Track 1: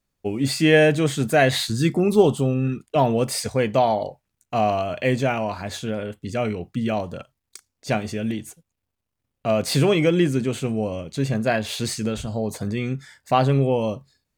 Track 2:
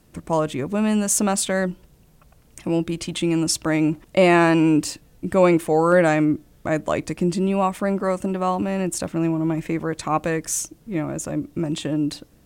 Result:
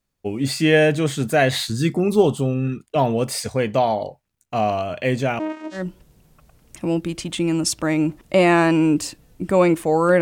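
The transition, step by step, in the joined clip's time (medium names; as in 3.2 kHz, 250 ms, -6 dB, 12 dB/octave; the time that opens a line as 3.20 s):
track 1
5.39–5.87 s: vocoder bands 4, saw 312 Hz
5.79 s: go over to track 2 from 1.62 s, crossfade 0.16 s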